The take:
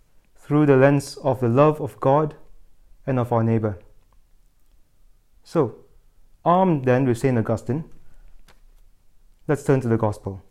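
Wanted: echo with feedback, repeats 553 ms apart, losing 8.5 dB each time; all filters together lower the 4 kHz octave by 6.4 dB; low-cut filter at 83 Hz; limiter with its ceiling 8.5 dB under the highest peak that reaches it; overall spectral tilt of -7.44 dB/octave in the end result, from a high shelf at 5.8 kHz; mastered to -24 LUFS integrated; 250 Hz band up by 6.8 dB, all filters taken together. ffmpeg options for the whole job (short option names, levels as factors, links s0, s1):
-af "highpass=83,equalizer=f=250:t=o:g=8.5,equalizer=f=4000:t=o:g=-7.5,highshelf=f=5800:g=-3.5,alimiter=limit=0.355:level=0:latency=1,aecho=1:1:553|1106|1659|2212:0.376|0.143|0.0543|0.0206,volume=0.708"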